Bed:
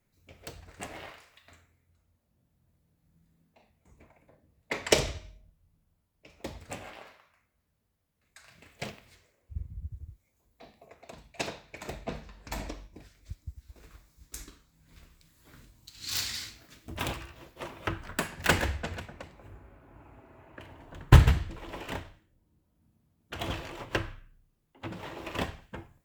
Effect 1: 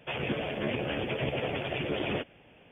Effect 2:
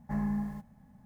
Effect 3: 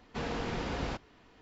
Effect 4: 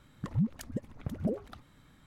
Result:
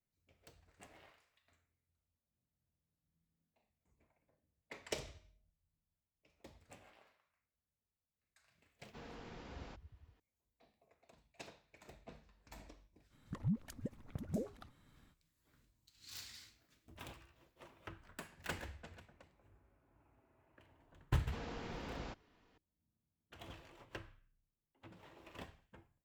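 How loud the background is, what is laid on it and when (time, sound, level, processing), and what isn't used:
bed -18.5 dB
8.79 add 3 -17 dB
13.09 add 4 -7.5 dB, fades 0.05 s
21.17 add 3 -11 dB
not used: 1, 2

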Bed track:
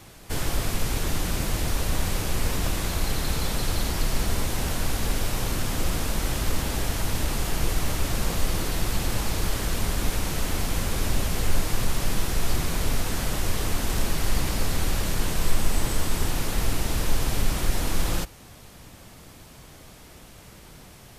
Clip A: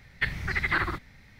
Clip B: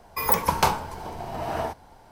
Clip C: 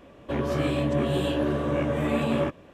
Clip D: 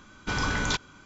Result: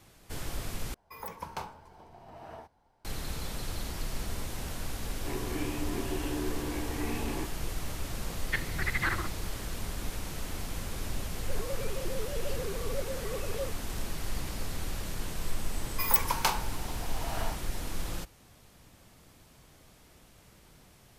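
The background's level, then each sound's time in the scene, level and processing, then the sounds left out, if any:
bed track -10.5 dB
0.94 replace with B -17.5 dB + high shelf 6100 Hz -5.5 dB
4.96 add C -6.5 dB + fixed phaser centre 870 Hz, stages 8
8.31 add A -4.5 dB
11.2 add C -13.5 dB + sine-wave speech
15.82 add B -9.5 dB + tilt shelf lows -7.5 dB, about 790 Hz
not used: D

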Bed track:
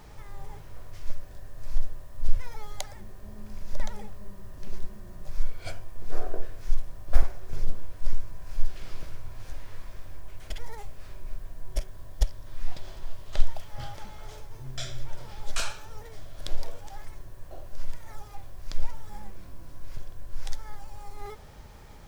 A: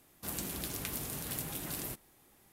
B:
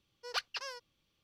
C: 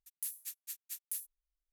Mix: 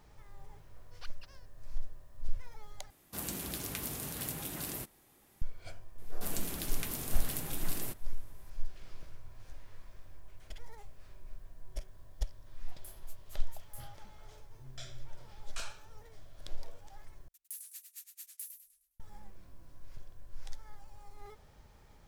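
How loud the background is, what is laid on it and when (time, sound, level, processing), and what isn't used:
bed track -11 dB
0.67 add B -15 dB + G.711 law mismatch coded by A
2.9 replace with A -0.5 dB
5.98 add A -0.5 dB
12.62 add C -14 dB
17.28 replace with C -5.5 dB + warbling echo 0.103 s, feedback 42%, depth 177 cents, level -6.5 dB

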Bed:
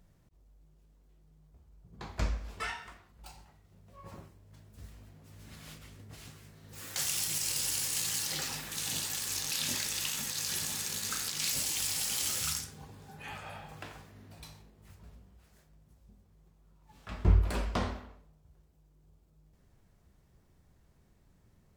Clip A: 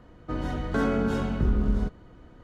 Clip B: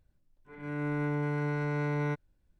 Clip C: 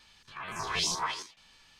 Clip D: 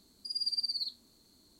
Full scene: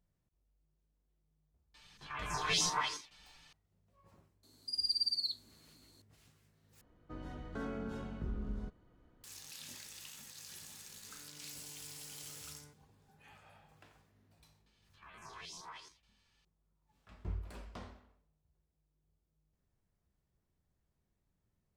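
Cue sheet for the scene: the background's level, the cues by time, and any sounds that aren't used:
bed -16.5 dB
1.74 add C -4 dB + comb 6.7 ms, depth 86%
4.43 add D -0.5 dB + steep high-pass 220 Hz 72 dB/oct
6.81 replace with A -16 dB
10.58 add B -17.5 dB + compressor 5:1, threshold -42 dBFS
14.66 add C -16 dB + limiter -24 dBFS

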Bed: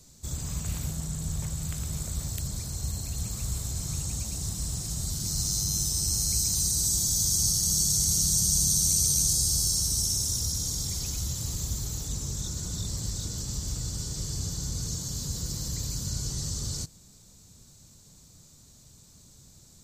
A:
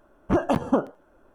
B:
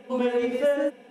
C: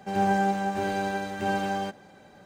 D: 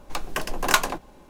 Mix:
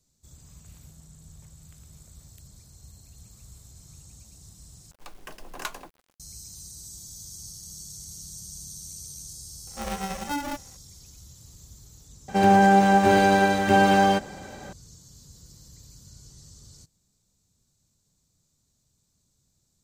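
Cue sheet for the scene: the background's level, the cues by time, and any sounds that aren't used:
bed -17 dB
4.91 replace with D -15 dB + bit-crush 7-bit
9.67 add B -8 dB + polarity switched at an audio rate 290 Hz
12.28 add C -6 dB + maximiser +16.5 dB
not used: A

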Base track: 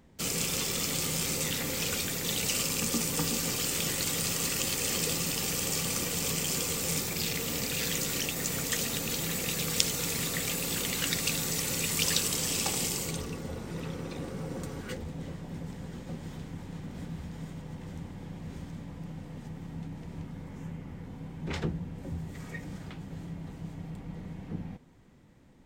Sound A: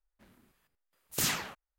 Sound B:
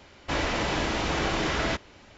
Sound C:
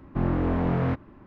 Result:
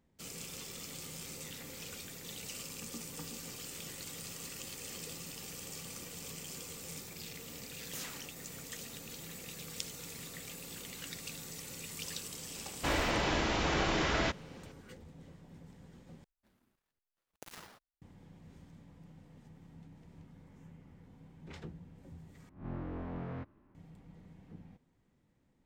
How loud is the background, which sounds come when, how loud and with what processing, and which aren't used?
base track -14.5 dB
6.75 add A -14.5 dB
12.55 add B -4 dB
16.24 replace with A -10.5 dB + switching dead time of 0.19 ms
22.49 replace with C -17.5 dB + spectral swells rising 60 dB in 0.36 s

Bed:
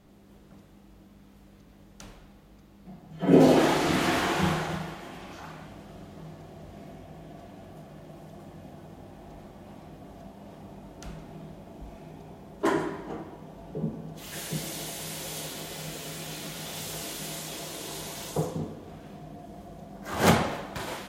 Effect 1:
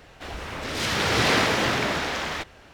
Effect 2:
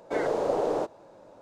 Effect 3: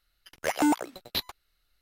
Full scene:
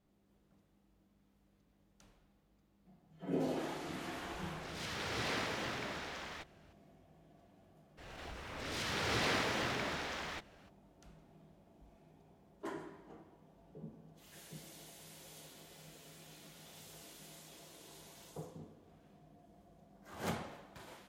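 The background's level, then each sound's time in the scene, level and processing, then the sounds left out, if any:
bed -18.5 dB
4 add 1 -17 dB
7.97 add 1 -13.5 dB, fades 0.02 s + backwards sustainer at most 26 dB/s
not used: 2, 3

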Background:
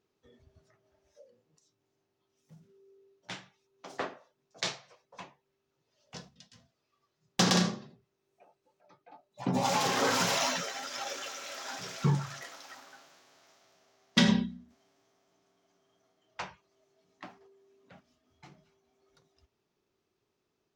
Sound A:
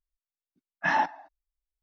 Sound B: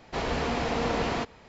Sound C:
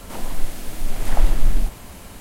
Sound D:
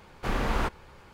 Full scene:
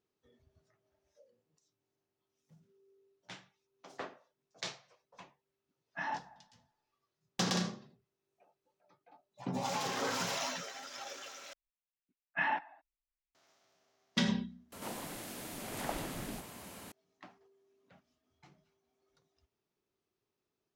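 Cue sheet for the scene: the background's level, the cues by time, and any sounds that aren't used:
background -7.5 dB
5.13 add A -13.5 dB + band-limited delay 94 ms, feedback 57%, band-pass 810 Hz, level -20.5 dB
11.53 replace with A -10.5 dB + synth low-pass 2600 Hz, resonance Q 2.7
14.72 replace with C -7.5 dB + HPF 150 Hz
not used: B, D

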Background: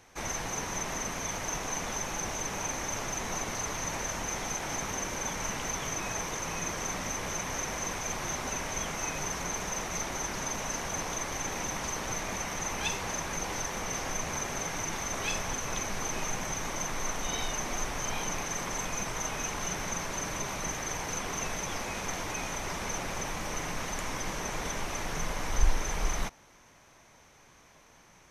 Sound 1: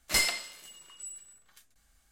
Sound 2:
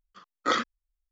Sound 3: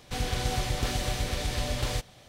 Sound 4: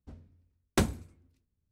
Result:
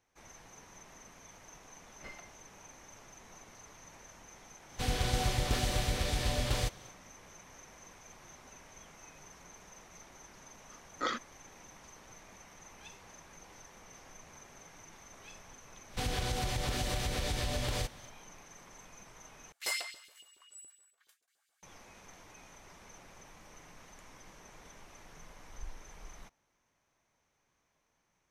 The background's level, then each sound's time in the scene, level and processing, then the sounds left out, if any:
background -20 dB
1.9 add 1 -15.5 dB + LPF 1600 Hz
4.68 add 3 -2 dB, fades 0.10 s
10.55 add 2 -9 dB
15.86 add 3 -1 dB, fades 0.10 s + compressor, threshold -28 dBFS
19.52 replace with 1 -10 dB + LFO high-pass saw up 7.1 Hz 340–3900 Hz
not used: 4

